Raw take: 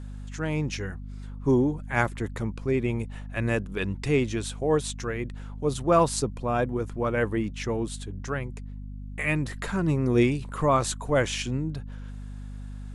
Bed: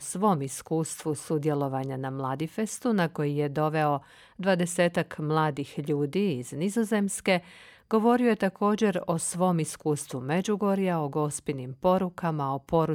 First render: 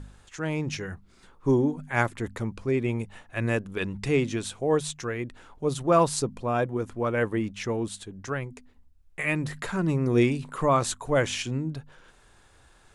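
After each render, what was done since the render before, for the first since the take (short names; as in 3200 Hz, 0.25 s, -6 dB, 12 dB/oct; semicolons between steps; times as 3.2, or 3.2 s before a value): de-hum 50 Hz, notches 5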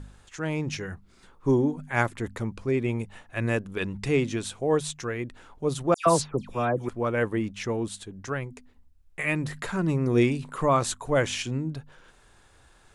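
5.94–6.89 dispersion lows, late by 0.123 s, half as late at 2500 Hz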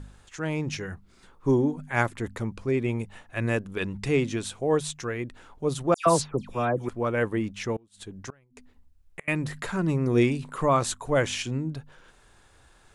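7.76–9.28 flipped gate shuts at -24 dBFS, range -29 dB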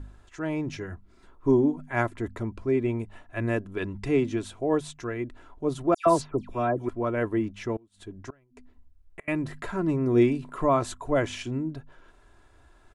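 high shelf 2200 Hz -10.5 dB; comb 3 ms, depth 46%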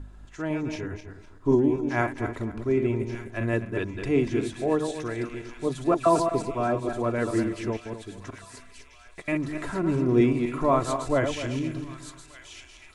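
regenerating reverse delay 0.126 s, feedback 49%, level -6 dB; thin delay 1.18 s, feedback 67%, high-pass 2900 Hz, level -6 dB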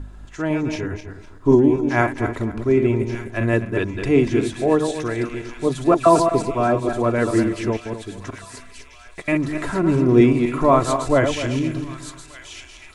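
gain +7 dB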